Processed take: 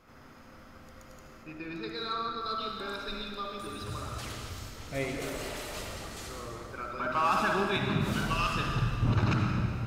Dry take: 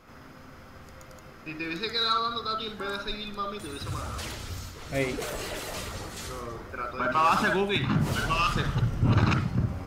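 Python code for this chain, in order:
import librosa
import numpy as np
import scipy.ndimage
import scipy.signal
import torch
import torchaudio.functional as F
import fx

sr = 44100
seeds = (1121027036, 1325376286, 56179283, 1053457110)

y = fx.high_shelf(x, sr, hz=2100.0, db=-9.5, at=(1.43, 2.41))
y = fx.rev_freeverb(y, sr, rt60_s=2.1, hf_ratio=0.95, predelay_ms=50, drr_db=2.5)
y = F.gain(torch.from_numpy(y), -5.5).numpy()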